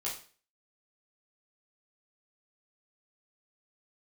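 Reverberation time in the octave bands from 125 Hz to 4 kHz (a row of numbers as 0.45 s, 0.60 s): 0.40 s, 0.40 s, 0.40 s, 0.40 s, 0.40 s, 0.40 s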